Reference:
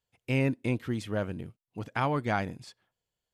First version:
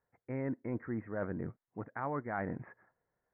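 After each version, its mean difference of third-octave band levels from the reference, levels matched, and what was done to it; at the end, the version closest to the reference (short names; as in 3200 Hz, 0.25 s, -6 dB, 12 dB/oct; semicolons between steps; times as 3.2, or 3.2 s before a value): 8.0 dB: steep low-pass 2000 Hz 72 dB/oct; low shelf 140 Hz -10.5 dB; reverse; compressor 5:1, threshold -44 dBFS, peak gain reduction 18 dB; reverse; gain +8.5 dB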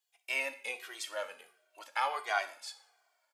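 15.0 dB: HPF 630 Hz 24 dB/oct; high shelf 2900 Hz +10 dB; two-slope reverb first 0.5 s, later 2.7 s, from -27 dB, DRR 8 dB; endless flanger 2 ms -1.4 Hz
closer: first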